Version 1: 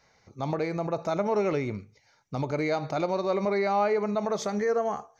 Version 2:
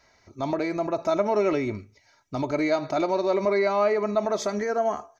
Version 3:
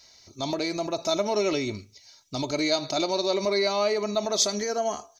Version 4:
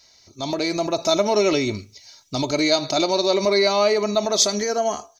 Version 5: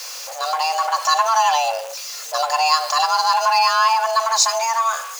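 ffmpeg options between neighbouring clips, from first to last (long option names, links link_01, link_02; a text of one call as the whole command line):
ffmpeg -i in.wav -af "aecho=1:1:3.1:0.58,volume=2dB" out.wav
ffmpeg -i in.wav -af "highshelf=frequency=2600:width_type=q:width=1.5:gain=13,volume=-2dB" out.wav
ffmpeg -i in.wav -af "dynaudnorm=framelen=360:gausssize=3:maxgain=6.5dB" out.wav
ffmpeg -i in.wav -af "aeval=exprs='val(0)+0.5*0.0398*sgn(val(0))':channel_layout=same,afreqshift=450,volume=1dB" out.wav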